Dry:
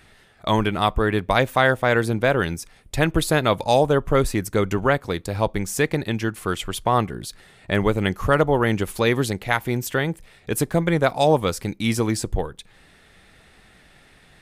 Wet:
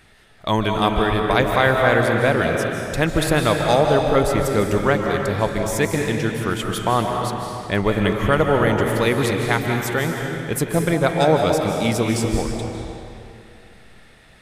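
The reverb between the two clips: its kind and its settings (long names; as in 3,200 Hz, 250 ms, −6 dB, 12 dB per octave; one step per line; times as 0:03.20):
comb and all-pass reverb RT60 2.6 s, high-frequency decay 0.85×, pre-delay 115 ms, DRR 1.5 dB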